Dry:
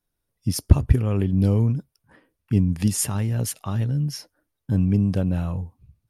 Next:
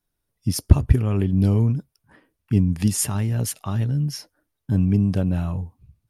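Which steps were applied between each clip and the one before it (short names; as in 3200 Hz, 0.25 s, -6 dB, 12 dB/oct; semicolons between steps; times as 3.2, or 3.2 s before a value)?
notch 510 Hz, Q 12; gain +1 dB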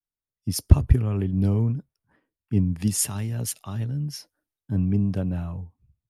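three-band expander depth 40%; gain -4 dB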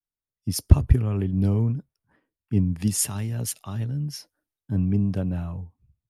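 nothing audible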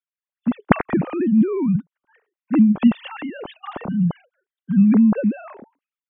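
sine-wave speech; gain +4.5 dB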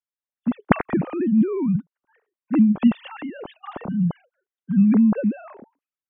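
mismatched tape noise reduction decoder only; gain -2 dB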